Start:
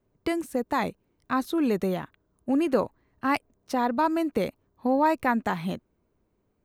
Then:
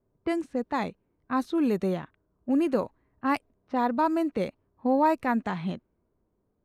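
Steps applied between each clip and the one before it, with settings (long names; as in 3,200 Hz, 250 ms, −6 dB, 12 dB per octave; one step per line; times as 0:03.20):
harmonic and percussive parts rebalanced percussive −5 dB
low-pass that shuts in the quiet parts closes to 1,300 Hz, open at −21 dBFS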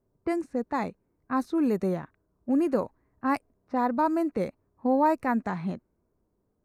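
parametric band 3,200 Hz −13.5 dB 0.52 octaves
tape wow and flutter 26 cents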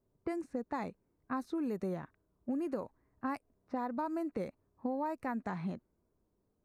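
downward compressor, threshold −29 dBFS, peak gain reduction 10.5 dB
level −4 dB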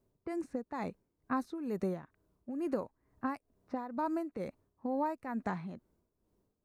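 amplitude tremolo 2.2 Hz, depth 67%
level +3.5 dB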